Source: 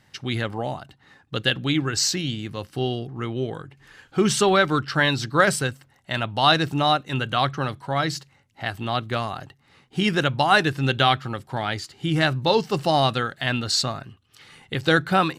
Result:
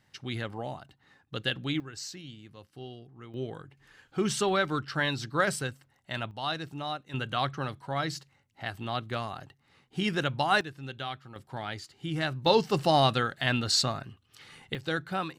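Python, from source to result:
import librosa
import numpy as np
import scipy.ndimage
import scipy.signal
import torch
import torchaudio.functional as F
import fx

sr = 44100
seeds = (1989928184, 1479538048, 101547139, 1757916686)

y = fx.gain(x, sr, db=fx.steps((0.0, -8.5), (1.8, -18.0), (3.34, -8.5), (6.31, -15.0), (7.14, -7.5), (10.61, -18.0), (11.36, -10.0), (12.46, -3.0), (14.75, -12.5)))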